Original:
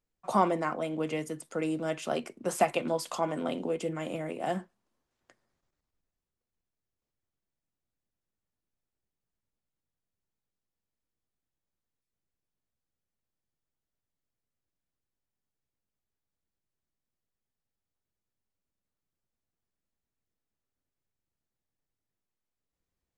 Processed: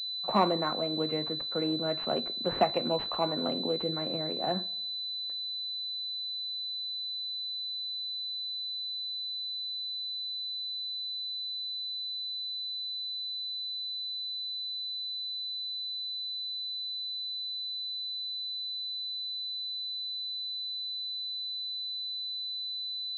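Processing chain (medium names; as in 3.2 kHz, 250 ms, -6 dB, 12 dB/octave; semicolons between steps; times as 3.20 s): two-slope reverb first 0.78 s, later 2.3 s, from -21 dB, DRR 18.5 dB; class-D stage that switches slowly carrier 4 kHz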